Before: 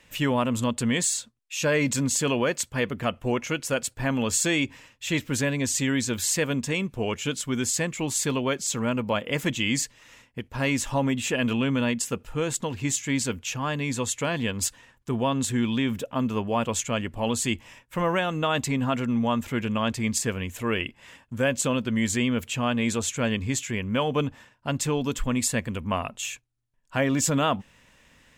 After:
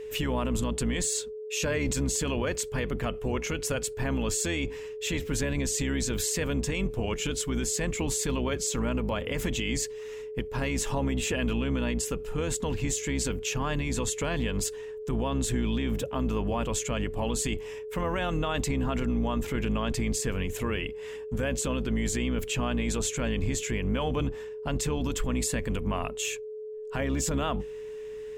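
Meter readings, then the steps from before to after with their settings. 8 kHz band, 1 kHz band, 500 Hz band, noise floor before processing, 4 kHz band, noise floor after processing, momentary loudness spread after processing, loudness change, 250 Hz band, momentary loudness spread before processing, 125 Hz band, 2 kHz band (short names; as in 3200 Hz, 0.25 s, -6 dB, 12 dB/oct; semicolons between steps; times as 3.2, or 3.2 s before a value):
-3.5 dB, -5.5 dB, -2.0 dB, -60 dBFS, -4.0 dB, -39 dBFS, 5 LU, -3.5 dB, -4.5 dB, 6 LU, -1.5 dB, -5.5 dB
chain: octaver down 2 oct, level 0 dB; limiter -21.5 dBFS, peak gain reduction 10.5 dB; whine 430 Hz -37 dBFS; gain +1 dB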